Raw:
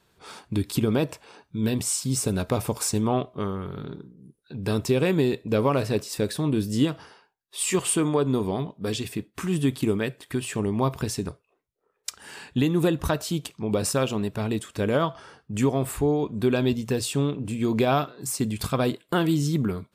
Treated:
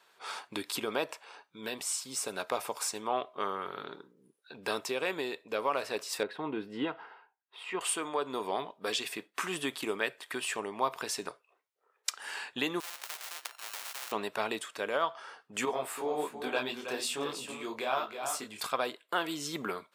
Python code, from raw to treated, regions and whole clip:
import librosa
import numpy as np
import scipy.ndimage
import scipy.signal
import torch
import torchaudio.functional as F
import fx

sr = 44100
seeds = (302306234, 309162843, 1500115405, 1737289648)

y = fx.chain(x, sr, fx.air_absorb(metres=480.0),
    fx.notch_comb(f0_hz=580.0), at=(6.23, 7.81))
y = fx.chain(y, sr, fx.sample_sort(block=32),
    fx.ladder_highpass(hz=630.0, resonance_pct=45),
    fx.spectral_comp(ratio=10.0), at=(12.8, 14.12))
y = fx.chain(y, sr, fx.echo_single(ms=322, db=-9.0),
    fx.detune_double(cents=42), at=(15.65, 18.61))
y = scipy.signal.sosfilt(scipy.signal.butter(2, 750.0, 'highpass', fs=sr, output='sos'), y)
y = fx.high_shelf(y, sr, hz=4400.0, db=-7.5)
y = fx.rider(y, sr, range_db=4, speed_s=0.5)
y = y * librosa.db_to_amplitude(1.5)